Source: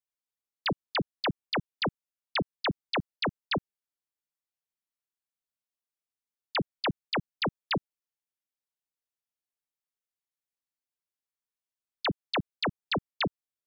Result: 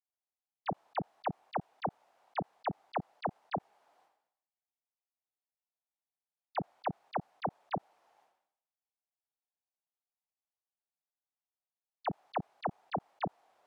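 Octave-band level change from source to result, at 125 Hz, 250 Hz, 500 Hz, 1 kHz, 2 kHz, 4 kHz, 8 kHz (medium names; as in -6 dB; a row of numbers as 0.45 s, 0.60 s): -7.5 dB, -8.5 dB, -4.5 dB, -1.0 dB, -14.5 dB, -21.5 dB, no reading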